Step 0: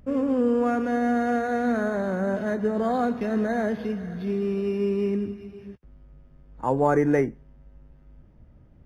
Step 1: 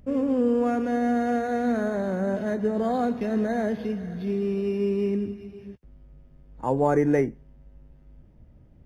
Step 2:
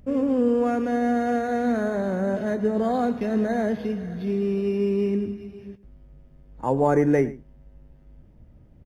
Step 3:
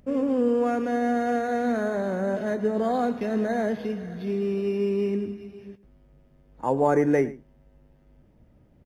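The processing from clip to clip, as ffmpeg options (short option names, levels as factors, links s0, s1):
-af "equalizer=f=1300:t=o:w=0.93:g=-5"
-filter_complex "[0:a]asplit=2[s0][s1];[s1]adelay=110.8,volume=0.126,highshelf=f=4000:g=-2.49[s2];[s0][s2]amix=inputs=2:normalize=0,volume=1.19"
-af "lowshelf=f=140:g=-10"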